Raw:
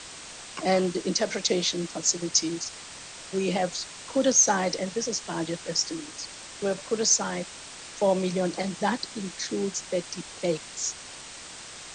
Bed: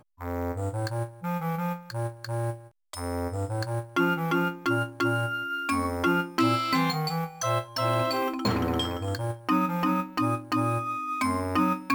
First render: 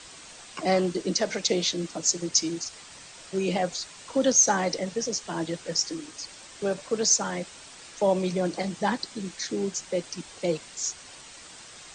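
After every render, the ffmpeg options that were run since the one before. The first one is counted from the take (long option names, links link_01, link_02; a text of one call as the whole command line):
ffmpeg -i in.wav -af "afftdn=noise_reduction=6:noise_floor=-43" out.wav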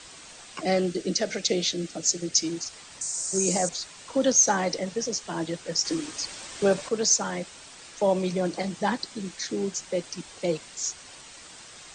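ffmpeg -i in.wav -filter_complex "[0:a]asettb=1/sr,asplit=3[link_01][link_02][link_03];[link_01]atrim=end=0.614[link_04];[link_02]atrim=start=0.61:end=2.44,asetpts=PTS-STARTPTS,afade=type=in:duration=0.004:curve=qsin,afade=type=out:start_time=1.826:duration=0.004:curve=qsin,equalizer=frequency=1000:width=4.1:gain=-14.5[link_05];[link_03]atrim=start=2.436[link_06];[link_04][link_05]acrossfade=duration=0.004:curve1=hsin:curve2=qsin[link_07];[link_07][link_06]acrossfade=duration=0.004:curve1=qsin:curve2=hsin,asettb=1/sr,asplit=3[link_08][link_09][link_10];[link_08]atrim=end=3.014[link_11];[link_09]atrim=start=3.01:end=3.69,asetpts=PTS-STARTPTS,afade=type=in:duration=0.004:curve=qsin,afade=type=out:start_time=0.676:duration=0.004:curve=qsin,highshelf=frequency=4700:width_type=q:width=3:gain=13.5[link_12];[link_10]atrim=start=3.686[link_13];[link_11][link_12]acrossfade=duration=0.004:curve1=hsin:curve2=qsin[link_14];[link_14][link_13]acrossfade=duration=0.004:curve1=qsin:curve2=hsin,asettb=1/sr,asplit=3[link_15][link_16][link_17];[link_15]atrim=end=5.854[link_18];[link_16]atrim=start=5.85:end=6.89,asetpts=PTS-STARTPTS,afade=type=in:duration=0.004:curve=qsin,afade=type=out:start_time=1.036:duration=0.004:curve=qsin,acontrast=51[link_19];[link_17]atrim=start=6.886[link_20];[link_18][link_19]acrossfade=duration=0.004:curve1=hsin:curve2=qsin[link_21];[link_21][link_20]acrossfade=duration=0.004:curve1=qsin:curve2=hsin" out.wav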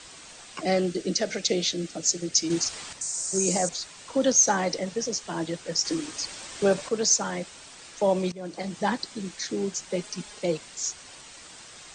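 ffmpeg -i in.wav -filter_complex "[0:a]asettb=1/sr,asplit=3[link_01][link_02][link_03];[link_01]atrim=end=2.504[link_04];[link_02]atrim=start=2.5:end=2.93,asetpts=PTS-STARTPTS,afade=type=in:duration=0.004:curve=qsin,afade=type=out:start_time=0.426:duration=0.004:curve=qsin,acontrast=87[link_05];[link_03]atrim=start=2.926[link_06];[link_04][link_05]acrossfade=duration=0.004:curve1=hsin:curve2=qsin[link_07];[link_07][link_06]acrossfade=duration=0.004:curve1=qsin:curve2=hsin,asettb=1/sr,asplit=3[link_08][link_09][link_10];[link_08]atrim=end=9.904[link_11];[link_09]atrim=start=9.9:end=10.39,asetpts=PTS-STARTPTS,afade=type=in:duration=0.004:curve=qsin,afade=type=out:start_time=0.486:duration=0.004:curve=qsin,aecho=1:1:4.8:0.65,atrim=end_sample=21609[link_12];[link_10]atrim=start=10.386[link_13];[link_11][link_12]acrossfade=duration=0.004:curve1=hsin:curve2=qsin[link_14];[link_14][link_13]acrossfade=duration=0.004:curve1=qsin:curve2=hsin,asplit=2[link_15][link_16];[link_15]atrim=end=8.32,asetpts=PTS-STARTPTS,afade=type=out:start_time=8.316:duration=0.004:curve=hsin:silence=0.11885[link_17];[link_16]atrim=start=8.32,asetpts=PTS-STARTPTS,afade=type=in:duration=0.48:silence=0.11885[link_18];[link_17][link_18]concat=n=2:v=0:a=1" out.wav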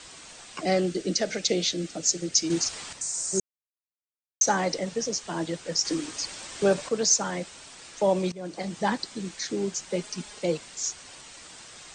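ffmpeg -i in.wav -filter_complex "[0:a]asplit=3[link_01][link_02][link_03];[link_01]atrim=end=3.4,asetpts=PTS-STARTPTS,afade=type=out:start_time=3.396:duration=0.004:curve=hsin[link_04];[link_02]atrim=start=3.4:end=4.41,asetpts=PTS-STARTPTS,volume=0[link_05];[link_03]atrim=start=4.41,asetpts=PTS-STARTPTS,afade=type=in:duration=0.004:curve=hsin[link_06];[link_04][link_05][link_06]concat=n=3:v=0:a=1" out.wav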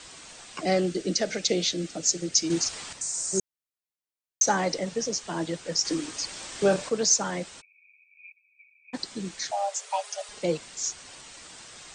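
ffmpeg -i in.wav -filter_complex "[0:a]asettb=1/sr,asplit=3[link_01][link_02][link_03];[link_01]atrim=end=6.324[link_04];[link_02]atrim=start=6.32:end=6.9,asetpts=PTS-STARTPTS,afade=type=in:duration=0.004:curve=qsin,afade=type=out:start_time=0.576:duration=0.004:curve=qsin,asplit=2[link_05][link_06];[link_06]adelay=32,volume=-7dB[link_07];[link_05][link_07]amix=inputs=2:normalize=0,atrim=end_sample=25578[link_08];[link_03]atrim=start=6.896[link_09];[link_04][link_08]acrossfade=duration=0.004:curve1=hsin:curve2=qsin[link_10];[link_10][link_09]acrossfade=duration=0.004:curve1=qsin:curve2=hsin,asplit=3[link_11][link_12][link_13];[link_11]afade=type=out:start_time=7.6:duration=0.02[link_14];[link_12]asuperpass=centerf=2400:order=20:qfactor=6.8,afade=type=in:start_time=7.6:duration=0.02,afade=type=out:start_time=8.93:duration=0.02[link_15];[link_13]afade=type=in:start_time=8.93:duration=0.02[link_16];[link_14][link_15][link_16]amix=inputs=3:normalize=0,asettb=1/sr,asplit=3[link_17][link_18][link_19];[link_17]atrim=end=9.514[link_20];[link_18]atrim=start=9.51:end=10.29,asetpts=PTS-STARTPTS,afade=type=in:duration=0.004:curve=qsin,afade=type=out:start_time=0.776:duration=0.004:curve=qsin,afreqshift=400[link_21];[link_19]atrim=start=10.286[link_22];[link_20][link_21]acrossfade=duration=0.004:curve1=hsin:curve2=qsin[link_23];[link_23][link_22]acrossfade=duration=0.004:curve1=qsin:curve2=hsin" out.wav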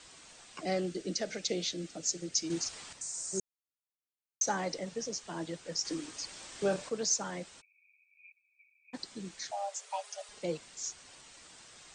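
ffmpeg -i in.wav -af "volume=-8.5dB" out.wav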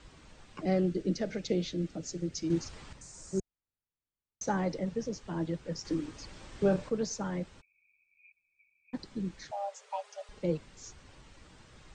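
ffmpeg -i in.wav -af "aemphasis=mode=reproduction:type=riaa,bandreject=frequency=700:width=12" out.wav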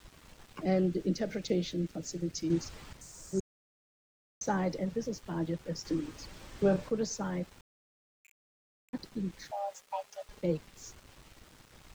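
ffmpeg -i in.wav -af "aeval=exprs='val(0)*gte(abs(val(0)),0.002)':channel_layout=same" out.wav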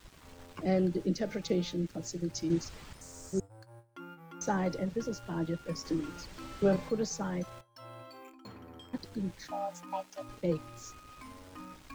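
ffmpeg -i in.wav -i bed.wav -filter_complex "[1:a]volume=-23.5dB[link_01];[0:a][link_01]amix=inputs=2:normalize=0" out.wav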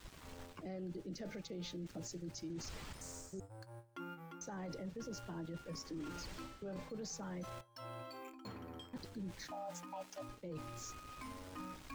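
ffmpeg -i in.wav -af "areverse,acompressor=threshold=-38dB:ratio=6,areverse,alimiter=level_in=14dB:limit=-24dB:level=0:latency=1:release=13,volume=-14dB" out.wav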